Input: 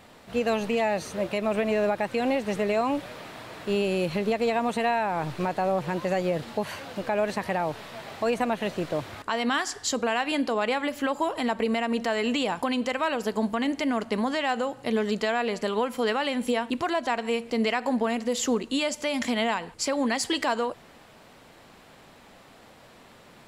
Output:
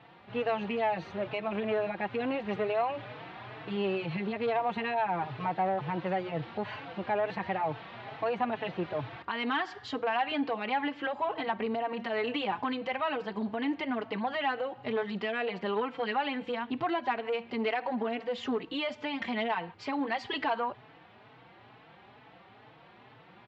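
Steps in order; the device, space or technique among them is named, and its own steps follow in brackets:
barber-pole flanger into a guitar amplifier (barber-pole flanger 4.1 ms +2.2 Hz; soft clipping −21 dBFS, distortion −18 dB; loudspeaker in its box 100–3,400 Hz, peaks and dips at 120 Hz +8 dB, 230 Hz −5 dB, 560 Hz −5 dB, 810 Hz +4 dB)

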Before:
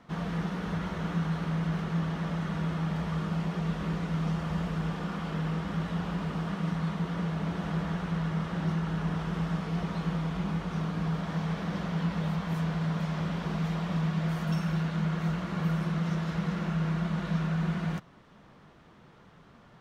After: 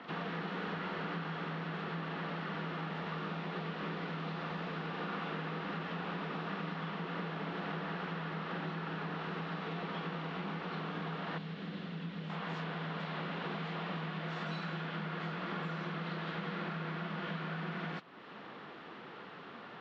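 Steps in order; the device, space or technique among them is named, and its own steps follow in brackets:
hearing aid with frequency lowering (hearing-aid frequency compression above 2,100 Hz 1.5 to 1; downward compressor 2 to 1, threshold −49 dBFS, peak gain reduction 13.5 dB; loudspeaker in its box 320–5,400 Hz, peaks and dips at 610 Hz −5 dB, 980 Hz −3 dB, 3,500 Hz +4 dB)
0:11.38–0:12.30: drawn EQ curve 210 Hz 0 dB, 890 Hz −12 dB, 4,200 Hz −3 dB
level +11 dB

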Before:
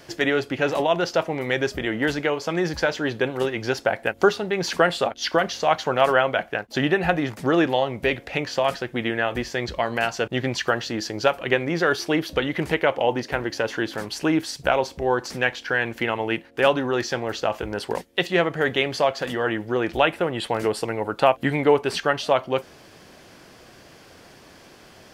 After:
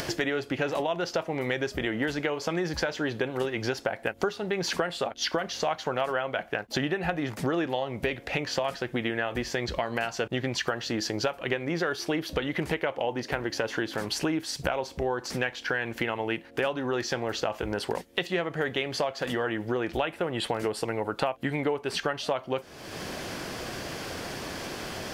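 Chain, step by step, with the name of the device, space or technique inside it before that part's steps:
upward and downward compression (upward compression, threshold −24 dBFS; downward compressor, threshold −25 dBFS, peak gain reduction 13 dB)

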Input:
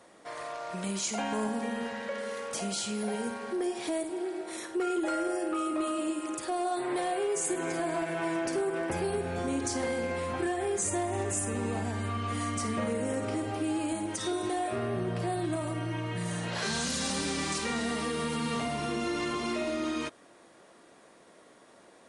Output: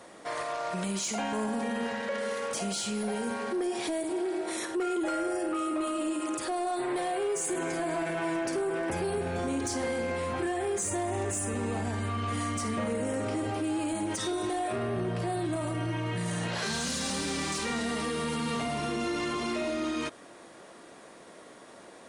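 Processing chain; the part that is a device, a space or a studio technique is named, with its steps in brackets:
soft clipper into limiter (soft clipping −23 dBFS, distortion −24 dB; brickwall limiter −31.5 dBFS, peak gain reduction 7 dB)
level +6.5 dB

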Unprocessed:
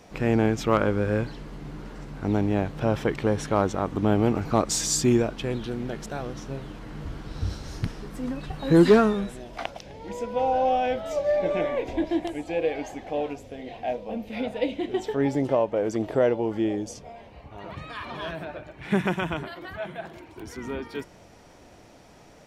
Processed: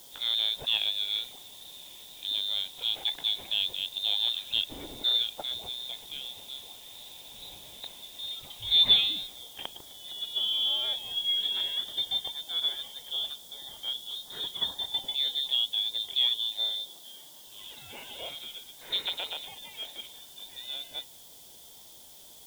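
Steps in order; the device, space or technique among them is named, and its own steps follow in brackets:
scrambled radio voice (band-pass filter 370–2,900 Hz; voice inversion scrambler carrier 3,900 Hz; white noise bed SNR 26 dB)
flat-topped bell 1,900 Hz −15 dB
0:16.80–0:17.47: high-pass filter 150 Hz 12 dB per octave
level +4.5 dB

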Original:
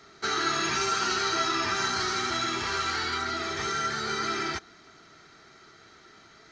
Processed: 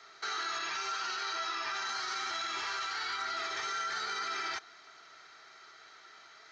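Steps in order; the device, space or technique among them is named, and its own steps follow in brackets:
DJ mixer with the lows and highs turned down (three-way crossover with the lows and the highs turned down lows −20 dB, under 550 Hz, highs −14 dB, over 7,700 Hz; brickwall limiter −27.5 dBFS, peak gain reduction 10.5 dB)
0:00.58–0:01.87: low-pass filter 6,900 Hz 12 dB per octave

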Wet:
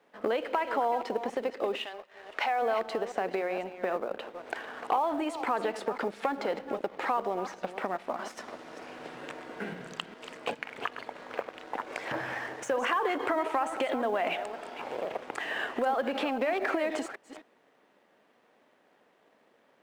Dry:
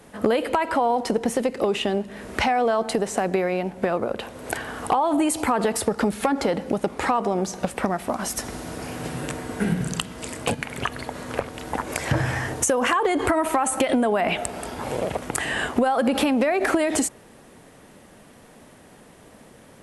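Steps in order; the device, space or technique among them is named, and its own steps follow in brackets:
delay that plays each chunk backwards 260 ms, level −10.5 dB
0:01.84–0:02.61: high-pass filter 1,000 Hz → 380 Hz 12 dB per octave
phone line with mismatched companding (band-pass filter 370–3,500 Hz; mu-law and A-law mismatch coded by A)
level −6 dB

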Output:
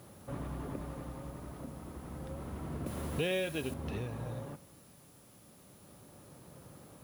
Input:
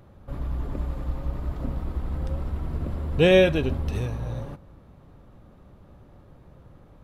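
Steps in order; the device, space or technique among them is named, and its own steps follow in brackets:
medium wave at night (band-pass filter 130–3,800 Hz; downward compressor 6 to 1, threshold −33 dBFS, peak gain reduction 18.5 dB; amplitude tremolo 0.29 Hz, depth 56%; steady tone 10,000 Hz −65 dBFS; white noise bed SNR 23 dB)
0:02.86–0:03.74: high-shelf EQ 2,500 Hz +11 dB

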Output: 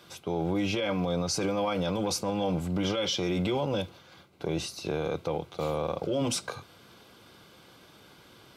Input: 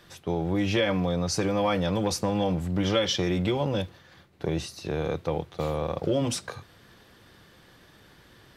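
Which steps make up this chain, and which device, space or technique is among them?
PA system with an anti-feedback notch (high-pass filter 170 Hz 6 dB per octave; Butterworth band-reject 1,800 Hz, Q 5.5; brickwall limiter −22 dBFS, peak gain reduction 11.5 dB)
level +2 dB

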